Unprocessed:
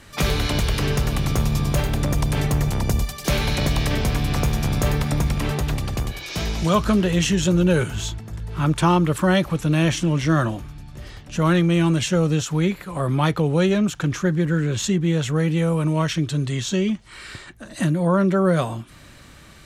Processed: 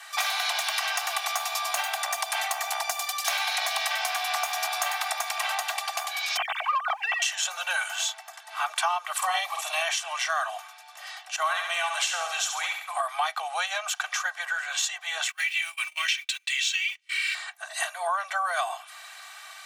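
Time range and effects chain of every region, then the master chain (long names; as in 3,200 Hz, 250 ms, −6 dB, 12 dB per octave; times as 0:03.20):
0:06.37–0:07.22: three sine waves on the formant tracks + downward compressor 3 to 1, threshold −21 dBFS + leveller curve on the samples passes 1
0:09.17–0:09.82: parametric band 1,500 Hz −14 dB 0.21 octaves + double-tracking delay 50 ms −3 dB
0:11.36–0:12.94: downward expander −31 dBFS + flutter between parallel walls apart 11.7 metres, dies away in 0.57 s
0:15.28–0:17.35: mu-law and A-law mismatch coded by mu + high-pass with resonance 2,400 Hz, resonance Q 3.5 + noise gate −38 dBFS, range −27 dB
whole clip: Butterworth high-pass 630 Hz 96 dB per octave; comb filter 2.6 ms, depth 63%; downward compressor 4 to 1, threshold −28 dBFS; level +3.5 dB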